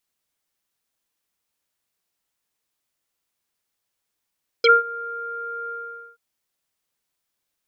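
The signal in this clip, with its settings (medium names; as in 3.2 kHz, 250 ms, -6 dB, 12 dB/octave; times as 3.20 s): synth note square A#4 24 dB/octave, low-pass 1.4 kHz, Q 7.6, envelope 2 oct, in 0.05 s, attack 4.8 ms, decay 0.18 s, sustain -23 dB, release 0.48 s, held 1.05 s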